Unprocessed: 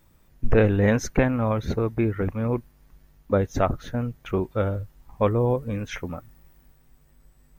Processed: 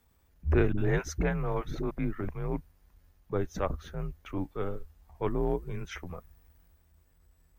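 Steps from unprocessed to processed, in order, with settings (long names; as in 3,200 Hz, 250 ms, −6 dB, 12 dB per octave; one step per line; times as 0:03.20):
frequency shifter −85 Hz
transient designer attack −6 dB, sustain −1 dB
0:00.72–0:01.91: all-pass dispersion highs, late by 58 ms, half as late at 370 Hz
level −6 dB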